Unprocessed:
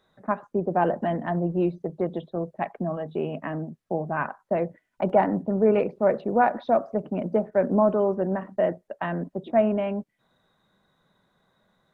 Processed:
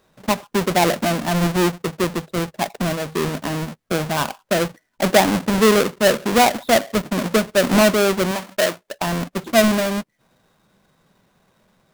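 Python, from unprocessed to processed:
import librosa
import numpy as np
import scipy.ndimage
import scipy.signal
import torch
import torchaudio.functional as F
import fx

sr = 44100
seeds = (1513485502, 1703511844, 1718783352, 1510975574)

y = fx.halfwave_hold(x, sr)
y = fx.low_shelf(y, sr, hz=260.0, db=-11.5, at=(8.31, 8.93))
y = F.gain(torch.from_numpy(y), 2.5).numpy()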